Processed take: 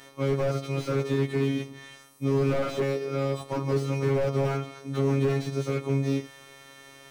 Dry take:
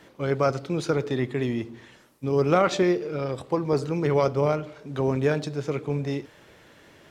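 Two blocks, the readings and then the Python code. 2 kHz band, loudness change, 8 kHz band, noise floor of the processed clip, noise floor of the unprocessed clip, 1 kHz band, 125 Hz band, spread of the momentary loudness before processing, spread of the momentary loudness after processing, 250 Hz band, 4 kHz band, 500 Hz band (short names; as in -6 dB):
-3.0 dB, -2.0 dB, -2.5 dB, -51 dBFS, -54 dBFS, -6.5 dB, +1.5 dB, 9 LU, 8 LU, -2.0 dB, -2.0 dB, -3.0 dB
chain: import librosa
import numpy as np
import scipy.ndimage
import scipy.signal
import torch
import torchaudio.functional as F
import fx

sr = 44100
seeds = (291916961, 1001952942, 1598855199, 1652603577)

y = fx.freq_snap(x, sr, grid_st=2)
y = fx.robotise(y, sr, hz=137.0)
y = fx.slew_limit(y, sr, full_power_hz=23.0)
y = F.gain(torch.from_numpy(y), 3.5).numpy()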